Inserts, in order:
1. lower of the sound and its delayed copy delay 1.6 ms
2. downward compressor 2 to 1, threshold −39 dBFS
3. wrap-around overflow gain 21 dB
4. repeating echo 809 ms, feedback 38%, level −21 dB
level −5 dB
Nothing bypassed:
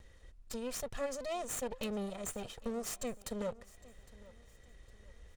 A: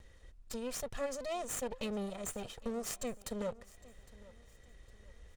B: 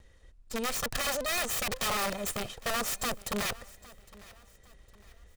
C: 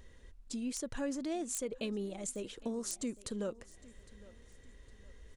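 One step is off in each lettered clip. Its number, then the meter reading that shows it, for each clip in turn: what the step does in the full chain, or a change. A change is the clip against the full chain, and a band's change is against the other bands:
3, change in crest factor +6.0 dB
2, average gain reduction 6.0 dB
1, 250 Hz band +5.0 dB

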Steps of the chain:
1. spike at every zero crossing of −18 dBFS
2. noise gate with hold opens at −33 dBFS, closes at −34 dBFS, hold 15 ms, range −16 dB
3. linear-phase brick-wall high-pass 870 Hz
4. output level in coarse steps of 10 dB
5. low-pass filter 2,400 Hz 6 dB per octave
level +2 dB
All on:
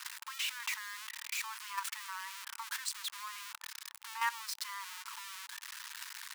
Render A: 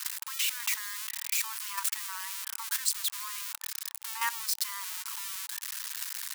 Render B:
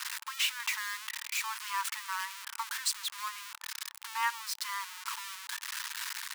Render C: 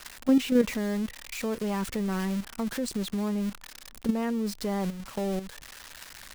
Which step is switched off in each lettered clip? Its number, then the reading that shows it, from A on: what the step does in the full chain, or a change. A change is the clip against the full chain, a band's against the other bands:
5, 8 kHz band +8.0 dB
4, change in crest factor −2.5 dB
3, 1 kHz band +2.5 dB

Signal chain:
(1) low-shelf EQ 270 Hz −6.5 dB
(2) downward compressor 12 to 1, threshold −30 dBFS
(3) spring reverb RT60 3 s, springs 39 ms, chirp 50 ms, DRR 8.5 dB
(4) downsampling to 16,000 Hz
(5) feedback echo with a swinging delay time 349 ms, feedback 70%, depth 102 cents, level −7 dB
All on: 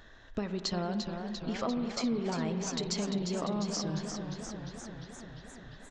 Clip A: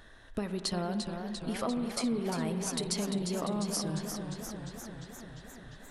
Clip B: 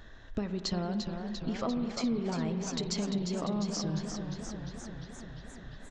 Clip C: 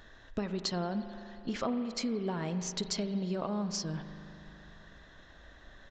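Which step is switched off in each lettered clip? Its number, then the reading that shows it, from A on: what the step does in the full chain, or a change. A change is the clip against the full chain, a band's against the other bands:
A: 4, 8 kHz band +3.0 dB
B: 1, 125 Hz band +2.5 dB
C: 5, change in momentary loudness spread +5 LU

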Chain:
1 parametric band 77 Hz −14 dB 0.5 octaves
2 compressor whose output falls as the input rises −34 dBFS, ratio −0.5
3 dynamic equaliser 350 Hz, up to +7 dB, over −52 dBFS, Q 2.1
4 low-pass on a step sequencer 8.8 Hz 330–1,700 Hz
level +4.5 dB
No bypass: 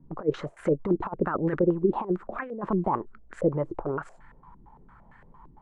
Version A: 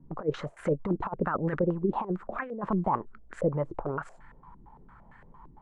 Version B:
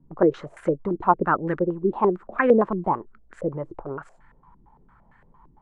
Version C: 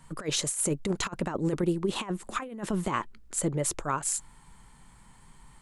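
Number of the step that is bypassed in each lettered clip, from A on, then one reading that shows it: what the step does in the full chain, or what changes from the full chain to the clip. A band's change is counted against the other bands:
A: 3, 500 Hz band −3.0 dB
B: 2, change in crest factor +2.5 dB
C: 4, 2 kHz band +5.0 dB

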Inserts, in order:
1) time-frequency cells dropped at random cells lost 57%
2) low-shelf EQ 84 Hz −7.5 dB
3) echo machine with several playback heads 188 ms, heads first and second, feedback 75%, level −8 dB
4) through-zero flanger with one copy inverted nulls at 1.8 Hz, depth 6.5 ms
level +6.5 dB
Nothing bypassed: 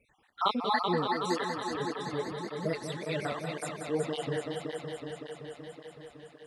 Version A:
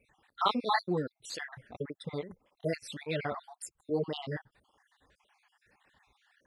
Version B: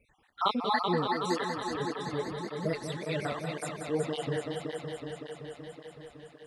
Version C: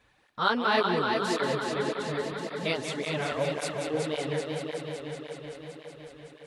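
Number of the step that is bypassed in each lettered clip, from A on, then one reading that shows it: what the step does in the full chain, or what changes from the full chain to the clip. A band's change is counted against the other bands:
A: 3, change in momentary loudness spread −3 LU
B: 2, 125 Hz band +1.5 dB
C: 1, 2 kHz band +3.5 dB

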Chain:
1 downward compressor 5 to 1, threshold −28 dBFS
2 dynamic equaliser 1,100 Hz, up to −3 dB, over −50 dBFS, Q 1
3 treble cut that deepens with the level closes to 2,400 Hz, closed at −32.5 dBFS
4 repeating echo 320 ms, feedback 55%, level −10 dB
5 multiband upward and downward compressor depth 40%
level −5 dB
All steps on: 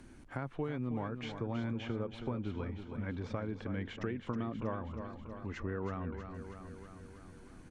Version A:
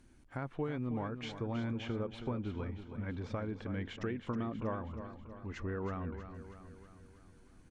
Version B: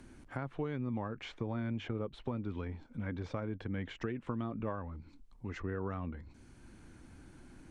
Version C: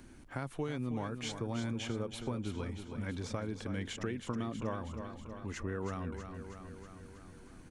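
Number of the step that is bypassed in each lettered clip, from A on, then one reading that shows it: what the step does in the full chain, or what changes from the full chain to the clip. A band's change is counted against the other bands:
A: 5, change in crest factor −2.5 dB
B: 4, change in momentary loudness spread +6 LU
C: 3, 4 kHz band +6.0 dB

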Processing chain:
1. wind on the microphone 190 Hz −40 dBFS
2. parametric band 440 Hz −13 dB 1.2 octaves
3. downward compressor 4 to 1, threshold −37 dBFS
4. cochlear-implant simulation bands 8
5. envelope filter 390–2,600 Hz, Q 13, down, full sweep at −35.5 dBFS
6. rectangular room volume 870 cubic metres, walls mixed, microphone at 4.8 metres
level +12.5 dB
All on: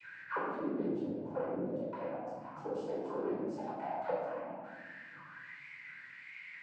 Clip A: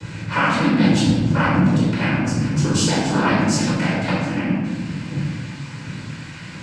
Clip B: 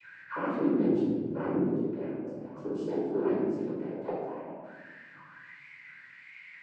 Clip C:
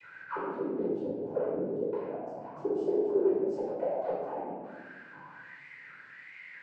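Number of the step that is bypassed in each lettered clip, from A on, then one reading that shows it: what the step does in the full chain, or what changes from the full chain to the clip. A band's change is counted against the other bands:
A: 5, change in crest factor −1.5 dB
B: 3, change in momentary loudness spread +9 LU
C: 2, 500 Hz band +7.5 dB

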